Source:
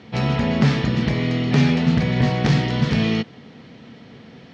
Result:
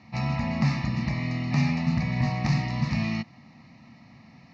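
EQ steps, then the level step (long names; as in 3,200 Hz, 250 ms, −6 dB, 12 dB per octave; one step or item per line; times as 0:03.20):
parametric band 1,300 Hz +5 dB 0.31 octaves
phaser with its sweep stopped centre 2,200 Hz, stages 8
−5.0 dB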